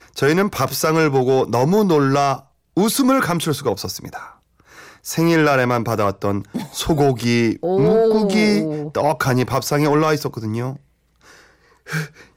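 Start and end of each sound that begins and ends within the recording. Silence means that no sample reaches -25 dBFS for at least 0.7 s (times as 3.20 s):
5.06–10.73 s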